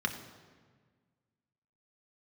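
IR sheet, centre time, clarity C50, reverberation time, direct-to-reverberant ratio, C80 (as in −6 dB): 19 ms, 9.5 dB, 1.6 s, 4.0 dB, 10.5 dB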